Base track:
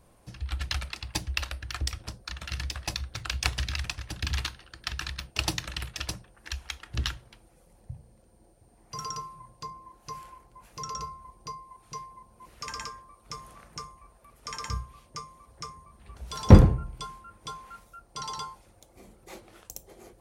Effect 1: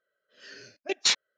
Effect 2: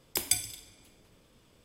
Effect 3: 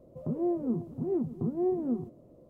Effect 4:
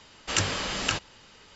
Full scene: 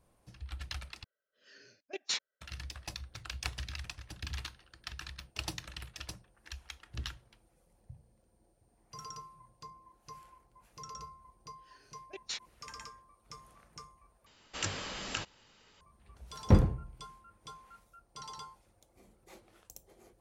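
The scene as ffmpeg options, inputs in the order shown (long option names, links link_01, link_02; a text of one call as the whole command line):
ffmpeg -i bed.wav -i cue0.wav -i cue1.wav -i cue2.wav -i cue3.wav -filter_complex "[1:a]asplit=2[link_01][link_02];[0:a]volume=-10dB,asplit=3[link_03][link_04][link_05];[link_03]atrim=end=1.044[link_06];[link_01]atrim=end=1.37,asetpts=PTS-STARTPTS,volume=-11dB[link_07];[link_04]atrim=start=2.406:end=14.264[link_08];[4:a]atrim=end=1.55,asetpts=PTS-STARTPTS,volume=-10dB[link_09];[link_05]atrim=start=15.806[link_10];[link_02]atrim=end=1.37,asetpts=PTS-STARTPTS,volume=-16.5dB,afade=type=in:duration=0.004:curve=hsin,afade=type=out:start_time=1.366:duration=0.004:curve=hsin,adelay=11240[link_11];[link_06][link_07]acrossfade=duration=0.004:curve1=hsin:curve2=hsin[link_12];[link_12][link_08]acrossfade=duration=0.004:curve1=hsin:curve2=hsin[link_13];[link_13][link_09]acrossfade=duration=0.004:curve1=hsin:curve2=hsin[link_14];[link_14][link_10]acrossfade=duration=0.004:curve1=hsin:curve2=hsin[link_15];[link_15][link_11]amix=inputs=2:normalize=0" out.wav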